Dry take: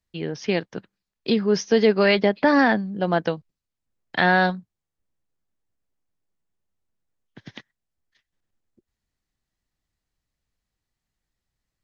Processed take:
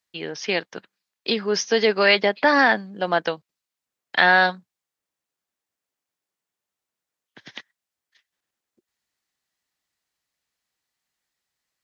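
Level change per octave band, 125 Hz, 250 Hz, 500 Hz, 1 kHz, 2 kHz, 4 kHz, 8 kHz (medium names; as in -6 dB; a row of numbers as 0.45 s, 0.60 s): -8.5 dB, -6.5 dB, -1.0 dB, +2.0 dB, +4.5 dB, +5.0 dB, no reading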